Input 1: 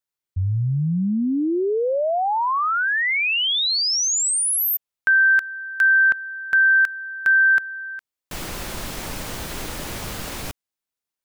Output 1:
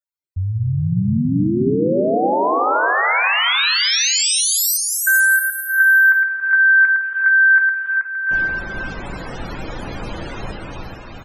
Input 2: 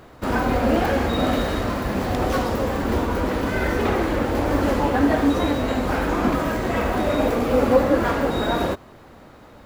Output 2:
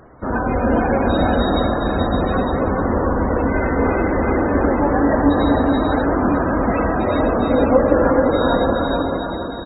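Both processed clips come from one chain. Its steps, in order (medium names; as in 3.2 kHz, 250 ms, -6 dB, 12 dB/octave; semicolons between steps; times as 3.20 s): bouncing-ball echo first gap 430 ms, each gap 0.65×, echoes 5; gated-style reverb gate 390 ms rising, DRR 4.5 dB; loudest bins only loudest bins 64; trim +1 dB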